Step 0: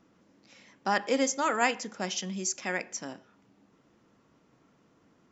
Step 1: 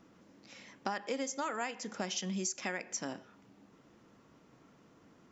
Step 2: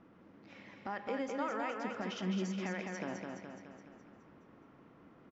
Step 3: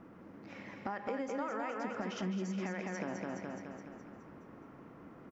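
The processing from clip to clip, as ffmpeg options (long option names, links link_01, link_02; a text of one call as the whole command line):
ffmpeg -i in.wav -af "acompressor=threshold=-35dB:ratio=12,volume=2.5dB" out.wav
ffmpeg -i in.wav -filter_complex "[0:a]lowpass=2300,alimiter=level_in=5.5dB:limit=-24dB:level=0:latency=1,volume=-5.5dB,asplit=2[link_01][link_02];[link_02]aecho=0:1:210|420|630|840|1050|1260|1470|1680:0.631|0.353|0.198|0.111|0.0621|0.0347|0.0195|0.0109[link_03];[link_01][link_03]amix=inputs=2:normalize=0,volume=1dB" out.wav
ffmpeg -i in.wav -af "acompressor=threshold=-41dB:ratio=5,equalizer=frequency=3500:width=1.4:gain=-6.5,volume=6.5dB" out.wav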